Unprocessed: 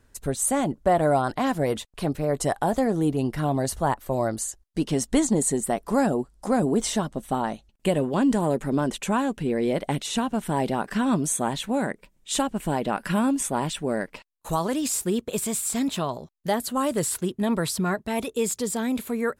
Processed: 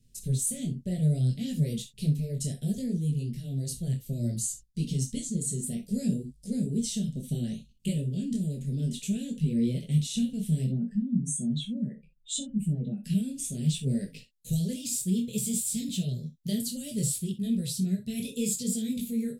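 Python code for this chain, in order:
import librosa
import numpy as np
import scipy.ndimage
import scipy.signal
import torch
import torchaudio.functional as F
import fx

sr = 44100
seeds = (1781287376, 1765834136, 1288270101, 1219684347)

y = fx.spec_expand(x, sr, power=2.1, at=(10.64, 13.04))
y = scipy.signal.sosfilt(scipy.signal.cheby1(2, 1.0, [270.0, 3500.0], 'bandstop', fs=sr, output='sos'), y)
y = fx.peak_eq(y, sr, hz=120.0, db=11.0, octaves=1.1)
y = fx.rider(y, sr, range_db=4, speed_s=0.5)
y = fx.fixed_phaser(y, sr, hz=310.0, stages=6)
y = fx.rev_gated(y, sr, seeds[0], gate_ms=80, shape='flat', drr_db=7.5)
y = fx.detune_double(y, sr, cents=22)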